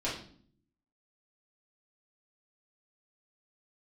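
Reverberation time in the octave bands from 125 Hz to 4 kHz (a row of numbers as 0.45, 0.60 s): 0.95, 0.90, 0.60, 0.45, 0.45, 0.45 s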